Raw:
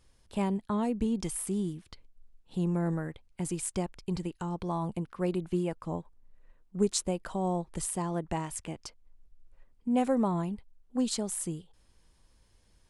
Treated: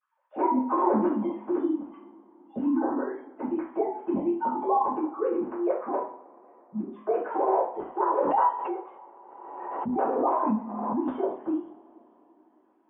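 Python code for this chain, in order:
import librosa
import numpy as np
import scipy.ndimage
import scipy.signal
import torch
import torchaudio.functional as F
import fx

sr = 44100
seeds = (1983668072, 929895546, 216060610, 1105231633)

y = fx.sine_speech(x, sr)
y = fx.dynamic_eq(y, sr, hz=210.0, q=1.1, threshold_db=-40.0, ratio=4.0, max_db=-3)
y = fx.over_compress(y, sr, threshold_db=-31.0, ratio=-0.5)
y = fx.lowpass_res(y, sr, hz=950.0, q=2.3)
y = fx.rev_double_slope(y, sr, seeds[0], early_s=0.47, late_s=4.2, knee_db=-28, drr_db=-9.5)
y = fx.pre_swell(y, sr, db_per_s=34.0, at=(8.22, 11.01))
y = y * librosa.db_to_amplitude(-4.5)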